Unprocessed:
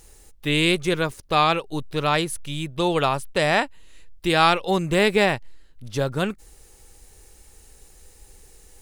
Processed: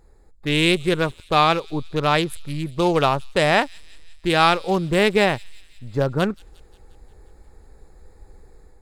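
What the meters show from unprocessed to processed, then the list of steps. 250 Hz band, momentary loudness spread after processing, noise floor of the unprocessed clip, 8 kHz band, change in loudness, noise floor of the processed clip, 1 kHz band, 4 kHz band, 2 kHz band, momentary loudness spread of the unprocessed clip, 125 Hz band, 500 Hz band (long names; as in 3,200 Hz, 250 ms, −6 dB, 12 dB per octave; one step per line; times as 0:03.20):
+2.0 dB, 12 LU, −52 dBFS, −1.5 dB, +1.5 dB, −51 dBFS, +2.0 dB, +1.0 dB, +1.0 dB, 12 LU, +2.5 dB, +2.0 dB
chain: adaptive Wiener filter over 15 samples
automatic gain control gain up to 6 dB
delay with a high-pass on its return 177 ms, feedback 61%, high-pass 4,600 Hz, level −15 dB
level −1.5 dB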